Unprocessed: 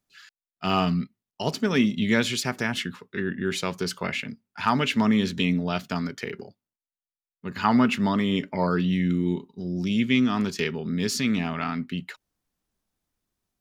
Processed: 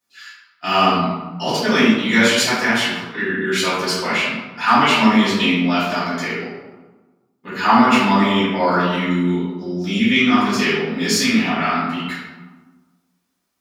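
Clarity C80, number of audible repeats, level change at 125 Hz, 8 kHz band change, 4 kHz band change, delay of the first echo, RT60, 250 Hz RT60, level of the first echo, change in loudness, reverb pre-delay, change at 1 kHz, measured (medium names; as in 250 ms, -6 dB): 2.5 dB, no echo, +2.5 dB, +10.0 dB, +10.5 dB, no echo, 1.3 s, 1.6 s, no echo, +8.5 dB, 3 ms, +12.0 dB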